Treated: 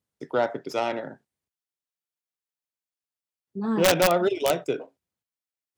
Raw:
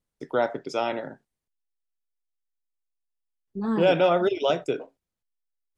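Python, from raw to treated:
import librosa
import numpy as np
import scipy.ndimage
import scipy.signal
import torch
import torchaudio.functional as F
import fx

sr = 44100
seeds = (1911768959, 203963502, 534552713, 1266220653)

y = fx.tracing_dist(x, sr, depth_ms=0.073)
y = scipy.signal.sosfilt(scipy.signal.butter(4, 67.0, 'highpass', fs=sr, output='sos'), y)
y = (np.mod(10.0 ** (11.5 / 20.0) * y + 1.0, 2.0) - 1.0) / 10.0 ** (11.5 / 20.0)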